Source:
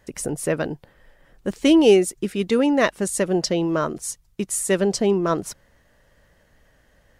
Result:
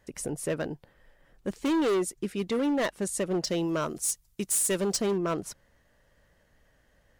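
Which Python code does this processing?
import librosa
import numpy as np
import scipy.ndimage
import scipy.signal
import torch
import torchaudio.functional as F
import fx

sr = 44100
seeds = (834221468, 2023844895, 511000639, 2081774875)

y = fx.high_shelf(x, sr, hz=4800.0, db=12.0, at=(3.47, 5.16))
y = np.clip(y, -10.0 ** (-16.5 / 20.0), 10.0 ** (-16.5 / 20.0))
y = F.gain(torch.from_numpy(y), -6.5).numpy()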